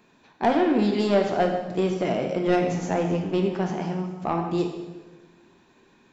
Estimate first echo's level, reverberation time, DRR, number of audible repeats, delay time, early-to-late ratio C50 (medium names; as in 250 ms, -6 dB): no echo, 1.2 s, 2.0 dB, no echo, no echo, 6.0 dB